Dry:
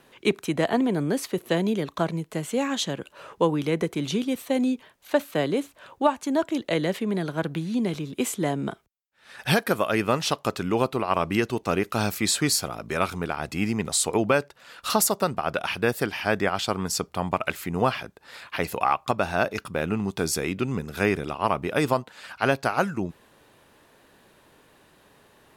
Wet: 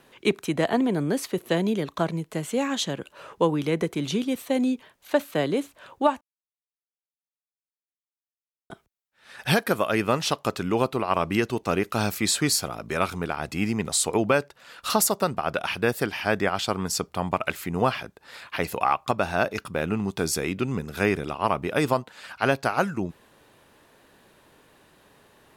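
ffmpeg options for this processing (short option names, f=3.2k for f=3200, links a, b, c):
-filter_complex "[0:a]asplit=3[a][b][c];[a]atrim=end=6.21,asetpts=PTS-STARTPTS,afade=t=out:st=6.206:d=0.004:c=hsin[d];[b]atrim=start=6.21:end=8.7,asetpts=PTS-STARTPTS,volume=0[e];[c]atrim=start=8.7,asetpts=PTS-STARTPTS,afade=t=in:d=0.004:c=hsin[f];[d][e][f]concat=n=3:v=0:a=1"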